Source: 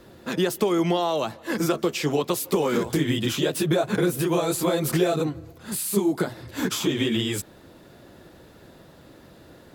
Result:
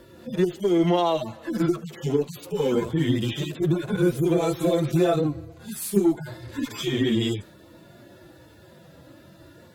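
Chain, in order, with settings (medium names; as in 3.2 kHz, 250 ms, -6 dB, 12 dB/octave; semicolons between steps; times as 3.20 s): harmonic-percussive separation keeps harmonic; Chebyshev shaper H 8 -34 dB, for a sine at -10.5 dBFS; trim +2.5 dB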